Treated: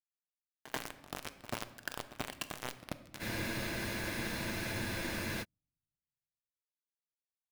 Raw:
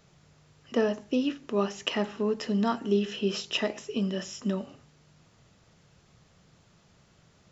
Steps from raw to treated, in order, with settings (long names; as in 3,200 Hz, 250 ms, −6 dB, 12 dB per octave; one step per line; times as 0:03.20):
sub-harmonics by changed cycles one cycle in 3, muted
high-pass filter 830 Hz 6 dB per octave
notch filter 2,500 Hz, Q 14
brickwall limiter −23 dBFS, peak gain reduction 9 dB
downward compressor 5 to 1, threshold −49 dBFS, peak gain reduction 16 dB
pitch shifter −10.5 semitones
bit reduction 7 bits
echo ahead of the sound 87 ms −15 dB
rectangular room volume 650 cubic metres, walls mixed, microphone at 0.42 metres
frozen spectrum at 0:03.22, 2.20 s
level +11 dB